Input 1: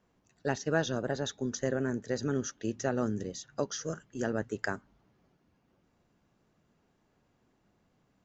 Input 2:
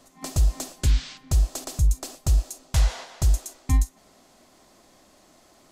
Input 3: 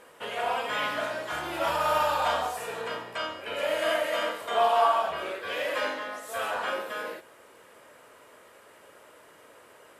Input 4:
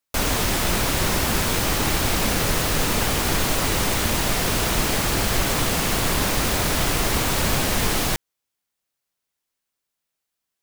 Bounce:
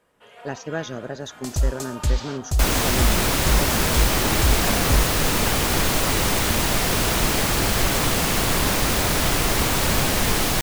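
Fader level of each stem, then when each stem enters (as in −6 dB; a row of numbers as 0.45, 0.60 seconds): +0.5, −1.0, −14.0, +1.0 decibels; 0.00, 1.20, 0.00, 2.45 seconds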